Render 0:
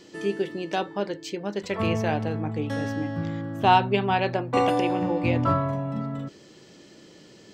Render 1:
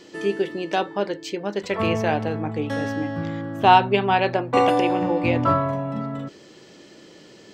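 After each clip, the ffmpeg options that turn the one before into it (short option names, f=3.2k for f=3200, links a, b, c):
-af "bass=f=250:g=-5,treble=f=4k:g=-3,volume=4.5dB"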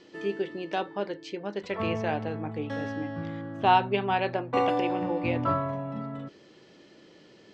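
-af "lowpass=4.8k,volume=-7dB"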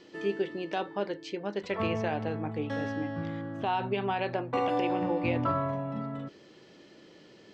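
-af "alimiter=limit=-19dB:level=0:latency=1:release=71"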